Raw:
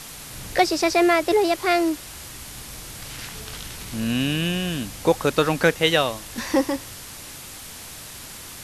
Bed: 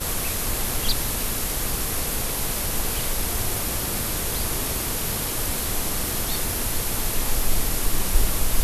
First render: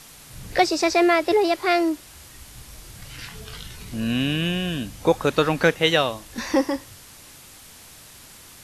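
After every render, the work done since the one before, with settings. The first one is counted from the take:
noise reduction from a noise print 7 dB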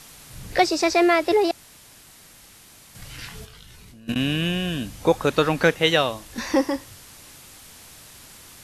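0:01.51–0:02.95: fill with room tone
0:03.45–0:04.16: output level in coarse steps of 23 dB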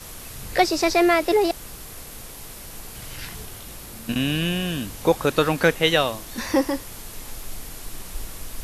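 mix in bed −13.5 dB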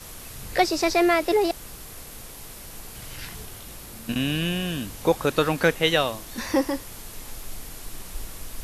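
level −2 dB

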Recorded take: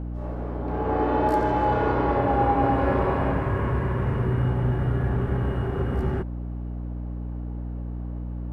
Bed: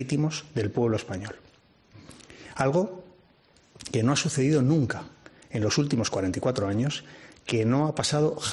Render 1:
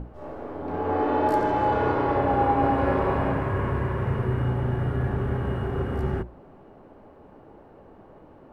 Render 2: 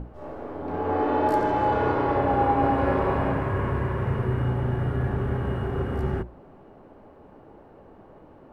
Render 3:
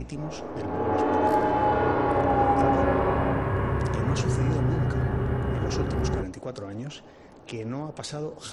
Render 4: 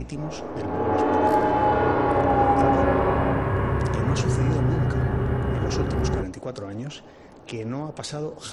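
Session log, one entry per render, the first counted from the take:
mains-hum notches 60/120/180/240/300/360 Hz
no processing that can be heard
mix in bed −9.5 dB
level +2.5 dB

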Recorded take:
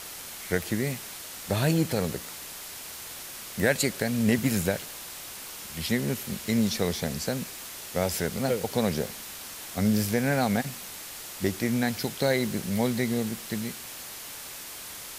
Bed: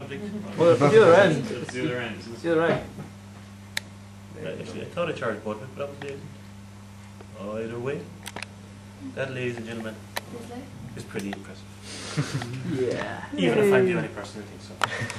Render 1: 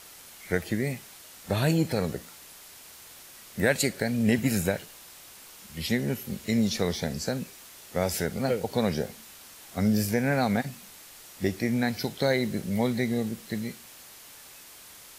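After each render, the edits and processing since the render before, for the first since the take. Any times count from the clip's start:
noise reduction from a noise print 8 dB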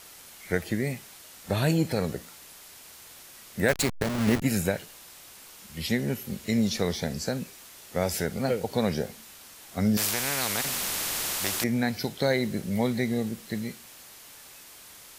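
0:03.68–0:04.42: hold until the input has moved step −24 dBFS
0:09.97–0:11.64: every bin compressed towards the loudest bin 4 to 1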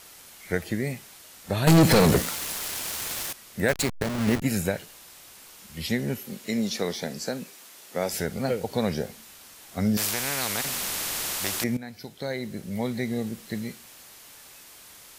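0:01.67–0:03.33: leveller curve on the samples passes 5
0:06.18–0:08.13: high-pass filter 200 Hz
0:11.77–0:13.41: fade in, from −14.5 dB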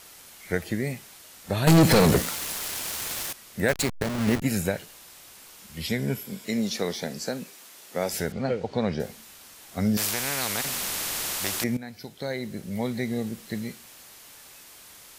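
0:05.88–0:06.45: EQ curve with evenly spaced ripples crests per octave 1.7, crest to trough 7 dB
0:08.32–0:09.00: high-frequency loss of the air 130 metres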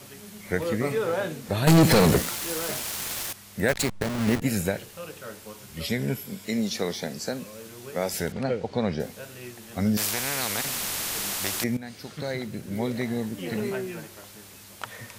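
mix in bed −12 dB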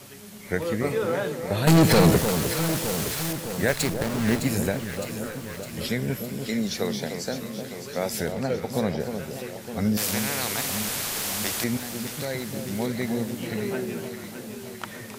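delay that swaps between a low-pass and a high-pass 305 ms, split 1,100 Hz, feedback 79%, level −7 dB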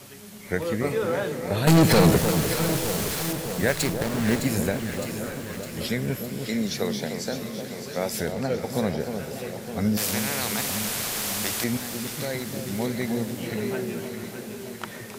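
feedback delay with all-pass diffusion 616 ms, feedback 47%, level −13 dB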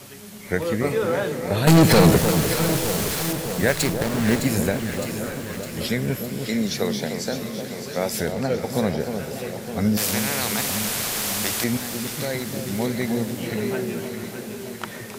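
level +3 dB

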